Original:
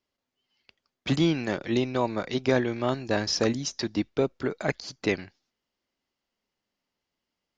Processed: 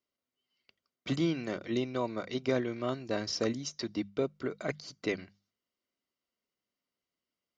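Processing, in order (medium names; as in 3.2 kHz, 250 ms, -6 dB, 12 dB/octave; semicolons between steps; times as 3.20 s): hum notches 50/100/150/200 Hz; comb of notches 850 Hz; trim -6 dB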